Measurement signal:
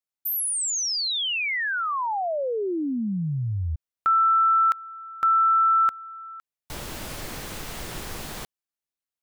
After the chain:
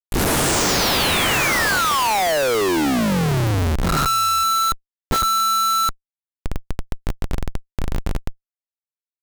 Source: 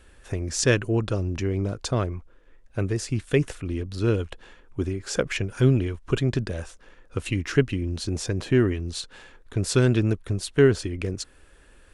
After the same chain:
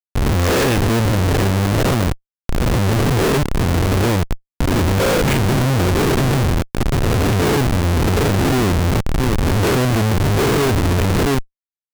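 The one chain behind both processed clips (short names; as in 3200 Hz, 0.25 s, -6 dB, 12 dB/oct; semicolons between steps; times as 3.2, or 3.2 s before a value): spectral swells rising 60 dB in 1.34 s; high shelf 6300 Hz -12 dB; echo 0.68 s -11 dB; expander -32 dBFS; Schmitt trigger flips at -24.5 dBFS; gain +7.5 dB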